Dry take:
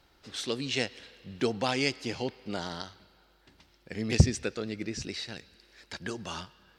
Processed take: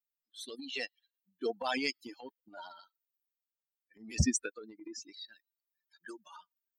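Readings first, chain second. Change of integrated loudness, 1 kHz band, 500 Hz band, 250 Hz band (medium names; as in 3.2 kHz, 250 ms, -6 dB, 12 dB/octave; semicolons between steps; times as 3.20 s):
-4.5 dB, -5.0 dB, -7.5 dB, -6.5 dB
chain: expander on every frequency bin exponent 3; transient shaper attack -9 dB, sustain +8 dB; trim +1.5 dB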